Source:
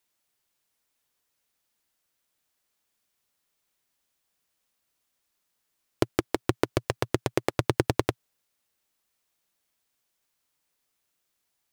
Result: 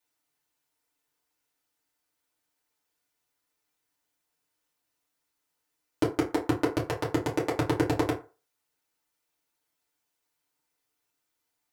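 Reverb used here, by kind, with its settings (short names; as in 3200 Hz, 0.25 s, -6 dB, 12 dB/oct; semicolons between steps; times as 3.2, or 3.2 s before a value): FDN reverb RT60 0.34 s, low-frequency decay 0.75×, high-frequency decay 0.55×, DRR -6 dB; gain -8 dB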